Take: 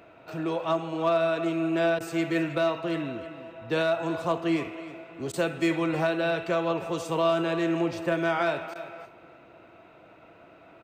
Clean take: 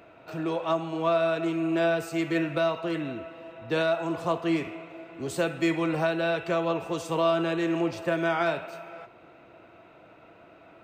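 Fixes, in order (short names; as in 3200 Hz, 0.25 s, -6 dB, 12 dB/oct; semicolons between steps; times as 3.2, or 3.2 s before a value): clip repair -16.5 dBFS; interpolate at 1.99/5.32/8.74, 13 ms; inverse comb 0.313 s -14.5 dB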